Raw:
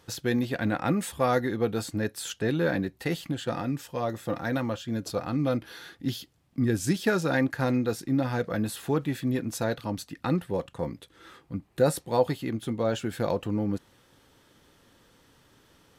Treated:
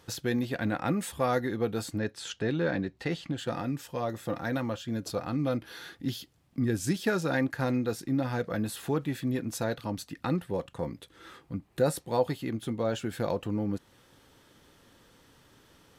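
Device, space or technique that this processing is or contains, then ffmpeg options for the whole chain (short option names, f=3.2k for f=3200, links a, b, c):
parallel compression: -filter_complex "[0:a]asplit=2[a][b];[b]acompressor=threshold=-37dB:ratio=6,volume=-3dB[c];[a][c]amix=inputs=2:normalize=0,asettb=1/sr,asplit=3[d][e][f];[d]atrim=end=1.984[g];[e]atrim=start=1.98:end=3.38,asetpts=PTS-STARTPTS,afade=t=in:d=0.004:c=qsin,afade=t=out:st=1.396:d=0.004:c=qsin,lowpass=6k[h];[f]atrim=start=3.376[i];[g][h]acrossfade=d=0.004:c1=hsin:c2=qsin[j];[j][i]acrossfade=d=0.004:c1=qsin:c2=hsin,volume=-4dB"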